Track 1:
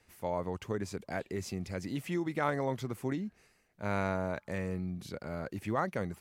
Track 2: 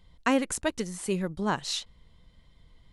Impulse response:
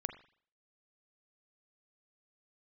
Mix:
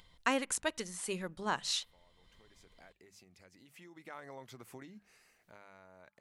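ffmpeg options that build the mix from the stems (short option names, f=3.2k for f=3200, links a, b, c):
-filter_complex "[0:a]acompressor=threshold=-38dB:ratio=8,adelay=1700,volume=-1dB,afade=t=in:st=2.31:d=0.57:silence=0.298538,afade=t=in:st=3.68:d=0.59:silence=0.266073,afade=t=out:st=5.24:d=0.3:silence=0.354813[a];[1:a]volume=-3dB,asplit=2[b][c];[c]volume=-21.5dB[d];[2:a]atrim=start_sample=2205[e];[d][e]afir=irnorm=-1:irlink=0[f];[a][b][f]amix=inputs=3:normalize=0,lowshelf=f=490:g=-11,bandreject=f=50:t=h:w=6,bandreject=f=100:t=h:w=6,bandreject=f=150:t=h:w=6,bandreject=f=200:t=h:w=6,acompressor=mode=upward:threshold=-56dB:ratio=2.5"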